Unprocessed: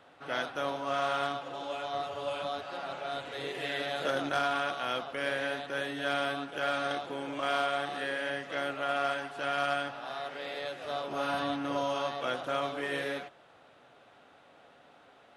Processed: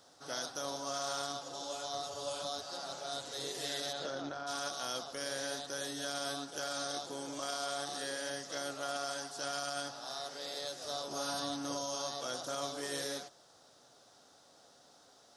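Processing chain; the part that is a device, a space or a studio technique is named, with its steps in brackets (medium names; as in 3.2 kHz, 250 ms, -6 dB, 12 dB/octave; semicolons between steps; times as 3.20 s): over-bright horn tweeter (resonant high shelf 3.7 kHz +14 dB, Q 3; peak limiter -21.5 dBFS, peak gain reduction 9 dB); 3.92–4.46 s: low-pass 4.8 kHz -> 1.9 kHz 12 dB/octave; trim -5 dB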